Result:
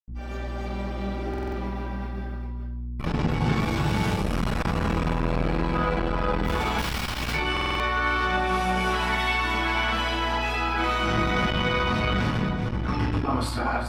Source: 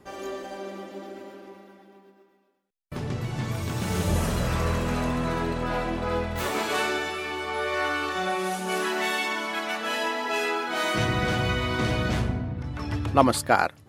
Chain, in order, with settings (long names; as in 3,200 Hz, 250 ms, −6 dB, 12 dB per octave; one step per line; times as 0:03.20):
feedback delay that plays each chunk backwards 197 ms, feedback 43%, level −5 dB
camcorder AGC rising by 7.9 dB per second
downward expander −36 dBFS
parametric band 84 Hz −13 dB 2.3 octaves
brickwall limiter −15.5 dBFS, peak gain reduction 11 dB
0:06.70–0:07.25: wrap-around overflow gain 21.5 dB
0:08.73–0:09.29: surface crackle 47 per second −42 dBFS
mains hum 60 Hz, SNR 13 dB
convolution reverb RT60 0.50 s, pre-delay 76 ms
buffer that repeats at 0:01.29/0:07.52, samples 2,048, times 5
saturating transformer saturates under 280 Hz
level +1.5 dB